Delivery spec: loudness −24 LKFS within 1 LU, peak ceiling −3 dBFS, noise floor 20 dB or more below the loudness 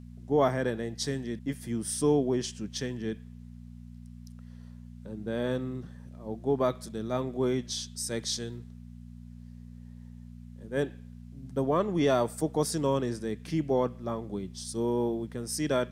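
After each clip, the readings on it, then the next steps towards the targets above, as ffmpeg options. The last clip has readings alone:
mains hum 60 Hz; hum harmonics up to 240 Hz; level of the hum −43 dBFS; integrated loudness −30.5 LKFS; sample peak −14.0 dBFS; target loudness −24.0 LKFS
→ -af "bandreject=frequency=60:width_type=h:width=4,bandreject=frequency=120:width_type=h:width=4,bandreject=frequency=180:width_type=h:width=4,bandreject=frequency=240:width_type=h:width=4"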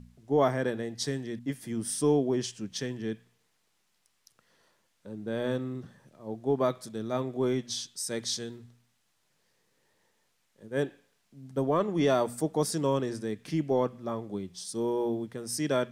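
mains hum none found; integrated loudness −31.0 LKFS; sample peak −14.0 dBFS; target loudness −24.0 LKFS
→ -af "volume=7dB"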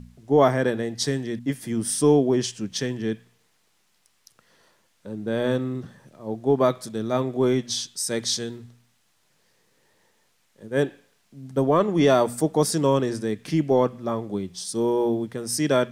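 integrated loudness −24.0 LKFS; sample peak −7.0 dBFS; background noise floor −66 dBFS

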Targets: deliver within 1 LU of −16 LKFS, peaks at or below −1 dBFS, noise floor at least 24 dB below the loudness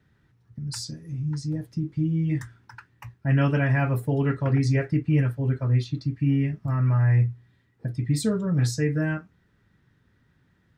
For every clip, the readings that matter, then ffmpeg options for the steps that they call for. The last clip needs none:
integrated loudness −25.0 LKFS; sample peak −11.0 dBFS; target loudness −16.0 LKFS
→ -af "volume=9dB"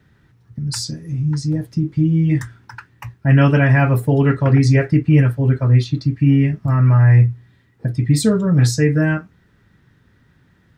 integrated loudness −16.0 LKFS; sample peak −2.0 dBFS; background noise floor −57 dBFS

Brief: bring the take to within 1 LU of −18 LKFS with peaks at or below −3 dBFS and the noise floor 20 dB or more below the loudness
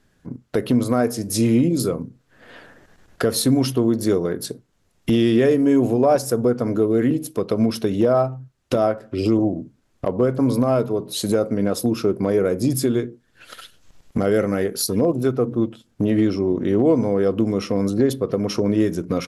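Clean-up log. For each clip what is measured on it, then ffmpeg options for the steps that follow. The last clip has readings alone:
integrated loudness −20.5 LKFS; sample peak −7.5 dBFS; target loudness −18.0 LKFS
→ -af "volume=2.5dB"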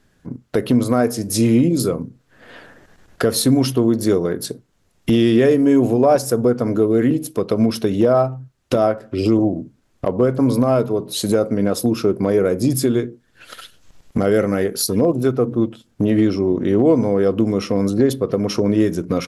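integrated loudness −18.0 LKFS; sample peak −5.0 dBFS; background noise floor −61 dBFS

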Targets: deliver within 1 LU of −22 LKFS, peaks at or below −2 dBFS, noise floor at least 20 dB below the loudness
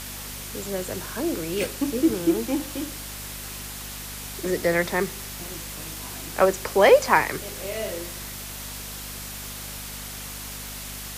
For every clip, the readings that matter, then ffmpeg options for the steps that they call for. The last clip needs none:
mains hum 50 Hz; hum harmonics up to 250 Hz; level of the hum −39 dBFS; background noise floor −36 dBFS; target noise floor −47 dBFS; integrated loudness −26.5 LKFS; sample peak −3.0 dBFS; target loudness −22.0 LKFS
→ -af "bandreject=frequency=50:width_type=h:width=4,bandreject=frequency=100:width_type=h:width=4,bandreject=frequency=150:width_type=h:width=4,bandreject=frequency=200:width_type=h:width=4,bandreject=frequency=250:width_type=h:width=4"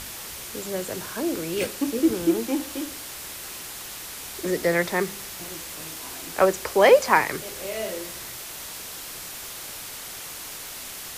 mains hum none found; background noise floor −38 dBFS; target noise floor −47 dBFS
→ -af "afftdn=noise_reduction=9:noise_floor=-38"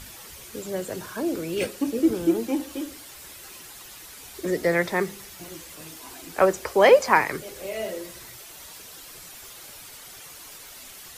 background noise floor −44 dBFS; integrated loudness −24.0 LKFS; sample peak −3.0 dBFS; target loudness −22.0 LKFS
→ -af "volume=2dB,alimiter=limit=-2dB:level=0:latency=1"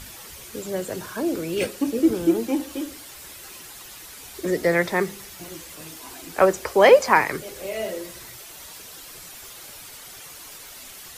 integrated loudness −22.0 LKFS; sample peak −2.0 dBFS; background noise floor −42 dBFS

